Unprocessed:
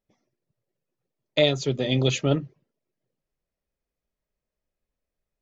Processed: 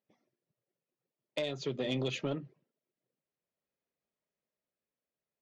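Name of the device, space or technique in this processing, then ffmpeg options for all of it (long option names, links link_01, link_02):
AM radio: -af "highpass=160,lowpass=4300,acompressor=threshold=-26dB:ratio=5,asoftclip=type=tanh:threshold=-21dB,tremolo=f=0.5:d=0.29,volume=-2.5dB"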